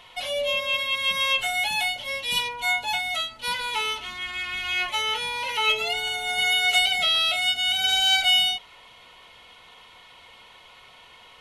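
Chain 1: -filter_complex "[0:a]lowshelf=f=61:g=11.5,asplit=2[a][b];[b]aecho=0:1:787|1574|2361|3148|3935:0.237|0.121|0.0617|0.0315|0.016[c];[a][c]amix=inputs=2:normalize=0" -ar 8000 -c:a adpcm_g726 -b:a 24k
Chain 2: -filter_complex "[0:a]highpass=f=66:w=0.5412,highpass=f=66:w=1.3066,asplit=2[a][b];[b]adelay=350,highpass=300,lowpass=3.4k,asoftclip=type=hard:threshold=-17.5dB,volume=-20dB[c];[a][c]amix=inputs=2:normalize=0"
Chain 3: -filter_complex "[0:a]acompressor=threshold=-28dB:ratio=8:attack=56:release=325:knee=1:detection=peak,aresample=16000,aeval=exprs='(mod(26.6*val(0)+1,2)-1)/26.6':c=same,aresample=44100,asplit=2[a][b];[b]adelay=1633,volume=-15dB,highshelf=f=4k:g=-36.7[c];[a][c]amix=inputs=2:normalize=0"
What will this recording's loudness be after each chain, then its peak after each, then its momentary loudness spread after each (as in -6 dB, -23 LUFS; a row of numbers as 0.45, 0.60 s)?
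-23.0, -22.5, -31.5 LUFS; -9.0, -9.0, -23.5 dBFS; 17, 10, 17 LU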